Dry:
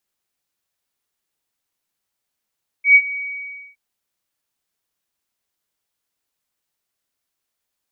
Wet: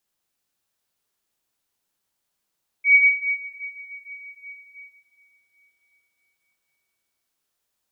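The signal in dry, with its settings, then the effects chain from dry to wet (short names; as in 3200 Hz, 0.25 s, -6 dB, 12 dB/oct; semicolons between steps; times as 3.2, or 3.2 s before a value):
ADSR sine 2260 Hz, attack 0.11 s, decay 59 ms, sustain -18.5 dB, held 0.31 s, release 0.606 s -4.5 dBFS
bell 2100 Hz -2.5 dB 0.43 oct; plate-style reverb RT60 4.5 s, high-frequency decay 0.7×, pre-delay 0 ms, DRR 2.5 dB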